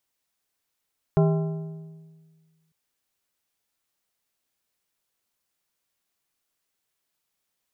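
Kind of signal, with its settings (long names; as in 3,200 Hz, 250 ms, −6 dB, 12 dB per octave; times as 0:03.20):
struck metal plate, lowest mode 160 Hz, modes 6, decay 1.71 s, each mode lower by 5 dB, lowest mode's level −15.5 dB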